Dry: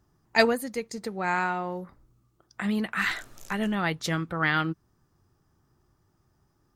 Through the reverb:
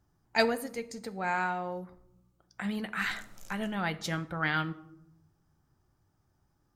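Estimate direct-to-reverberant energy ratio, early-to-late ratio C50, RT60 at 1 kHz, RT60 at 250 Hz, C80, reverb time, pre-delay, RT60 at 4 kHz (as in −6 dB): 11.0 dB, 17.5 dB, 0.75 s, 1.1 s, 20.0 dB, 0.80 s, 4 ms, 0.45 s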